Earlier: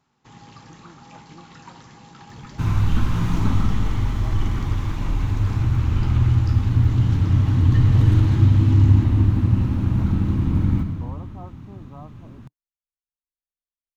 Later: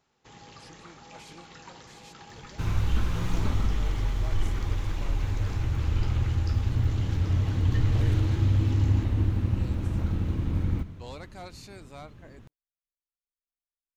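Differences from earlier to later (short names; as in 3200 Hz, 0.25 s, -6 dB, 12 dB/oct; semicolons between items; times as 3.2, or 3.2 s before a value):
speech: remove brick-wall FIR low-pass 1300 Hz; second sound: send -11.0 dB; master: add ten-band EQ 125 Hz -7 dB, 250 Hz -7 dB, 500 Hz +5 dB, 1000 Hz -6 dB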